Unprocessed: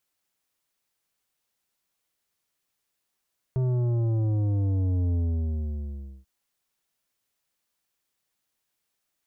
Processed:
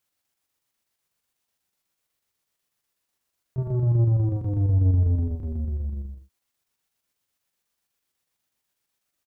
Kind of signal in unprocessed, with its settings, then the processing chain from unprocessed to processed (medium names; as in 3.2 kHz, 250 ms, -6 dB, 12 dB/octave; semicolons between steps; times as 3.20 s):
sub drop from 130 Hz, over 2.69 s, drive 10 dB, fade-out 1.11 s, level -23 dB
peaking EQ 93 Hz +3 dB 1.3 oct; square tremolo 8.1 Hz, depth 60%, duty 75%; doubling 43 ms -3.5 dB